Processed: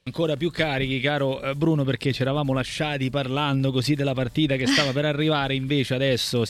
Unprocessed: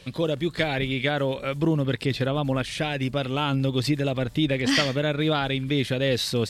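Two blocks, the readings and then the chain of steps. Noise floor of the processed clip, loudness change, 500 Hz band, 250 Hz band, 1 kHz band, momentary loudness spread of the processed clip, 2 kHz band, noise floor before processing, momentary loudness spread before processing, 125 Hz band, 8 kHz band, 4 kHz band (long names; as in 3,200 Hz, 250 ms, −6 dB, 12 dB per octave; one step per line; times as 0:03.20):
−37 dBFS, +1.5 dB, +1.5 dB, +1.5 dB, +1.5 dB, 5 LU, +1.5 dB, −39 dBFS, 5 LU, +1.5 dB, +1.5 dB, +1.5 dB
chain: noise gate with hold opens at −30 dBFS
level +1.5 dB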